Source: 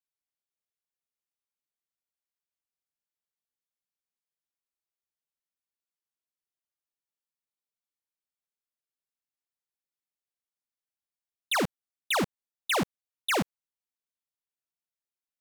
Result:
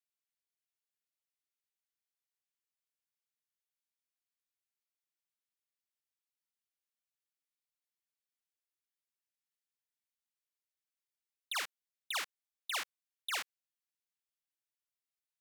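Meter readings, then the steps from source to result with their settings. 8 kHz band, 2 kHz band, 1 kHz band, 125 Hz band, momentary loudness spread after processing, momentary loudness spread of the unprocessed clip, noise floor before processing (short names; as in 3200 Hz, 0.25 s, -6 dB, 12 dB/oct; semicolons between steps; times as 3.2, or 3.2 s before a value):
-6.5 dB, -8.5 dB, -11.5 dB, under -40 dB, 9 LU, 8 LU, under -85 dBFS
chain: Chebyshev high-pass 1800 Hz, order 2; negative-ratio compressor -30 dBFS, ratio -0.5; gain -4 dB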